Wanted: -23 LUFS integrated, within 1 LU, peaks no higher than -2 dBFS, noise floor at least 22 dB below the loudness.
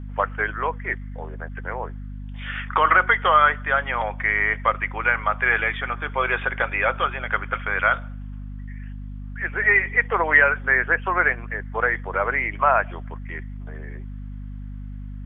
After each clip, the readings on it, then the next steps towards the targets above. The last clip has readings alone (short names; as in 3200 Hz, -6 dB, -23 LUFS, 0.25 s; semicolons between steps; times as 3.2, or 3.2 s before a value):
hum 50 Hz; harmonics up to 250 Hz; hum level -31 dBFS; loudness -21.0 LUFS; peak -3.5 dBFS; loudness target -23.0 LUFS
-> notches 50/100/150/200/250 Hz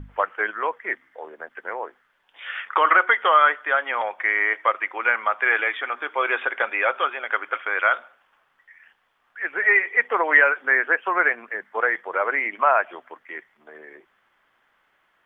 hum none; loudness -21.0 LUFS; peak -3.5 dBFS; loudness target -23.0 LUFS
-> gain -2 dB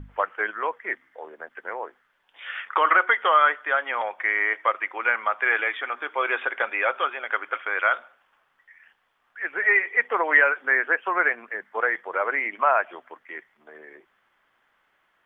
loudness -23.0 LUFS; peak -5.5 dBFS; noise floor -69 dBFS